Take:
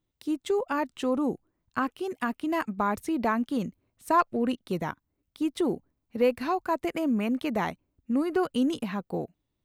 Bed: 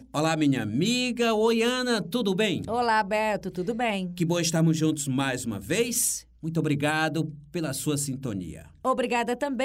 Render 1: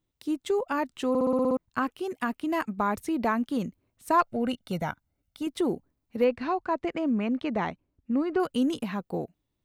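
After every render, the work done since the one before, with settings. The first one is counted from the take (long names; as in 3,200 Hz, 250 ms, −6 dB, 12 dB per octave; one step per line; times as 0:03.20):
0:01.09: stutter in place 0.06 s, 8 plays
0:04.22–0:05.47: comb filter 1.4 ms, depth 52%
0:06.24–0:08.40: high-frequency loss of the air 130 metres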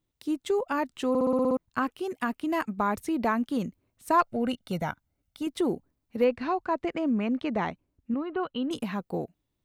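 0:08.14–0:08.71: Chebyshev low-pass with heavy ripple 4,200 Hz, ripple 6 dB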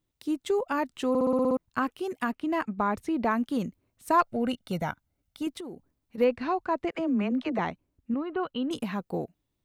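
0:02.31–0:03.31: high-shelf EQ 6,300 Hz −12 dB
0:05.57–0:06.18: downward compressor, threshold −37 dBFS
0:06.91–0:07.59: all-pass dispersion lows, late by 42 ms, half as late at 340 Hz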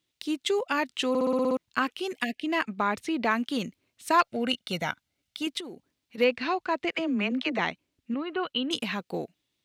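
meter weighting curve D
0:02.23–0:02.45: time-frequency box erased 740–1,700 Hz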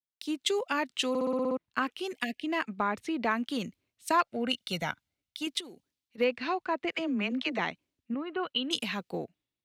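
downward compressor 2 to 1, threshold −29 dBFS, peak gain reduction 7.5 dB
multiband upward and downward expander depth 70%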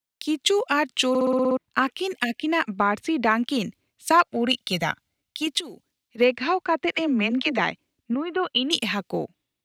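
level +8 dB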